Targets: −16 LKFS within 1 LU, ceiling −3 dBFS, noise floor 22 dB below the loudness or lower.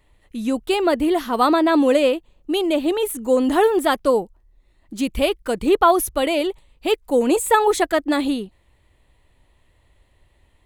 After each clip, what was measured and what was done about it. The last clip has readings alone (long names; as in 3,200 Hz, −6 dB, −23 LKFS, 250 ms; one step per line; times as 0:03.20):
integrated loudness −19.5 LKFS; sample peak −3.0 dBFS; target loudness −16.0 LKFS
→ level +3.5 dB
brickwall limiter −3 dBFS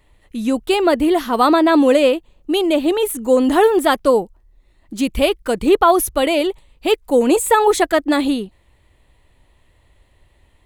integrated loudness −16.0 LKFS; sample peak −3.0 dBFS; background noise floor −57 dBFS